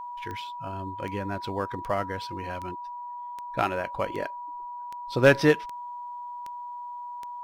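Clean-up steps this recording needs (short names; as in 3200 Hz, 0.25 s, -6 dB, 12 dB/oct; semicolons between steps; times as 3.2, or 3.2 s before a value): clip repair -8 dBFS; de-click; notch 970 Hz, Q 30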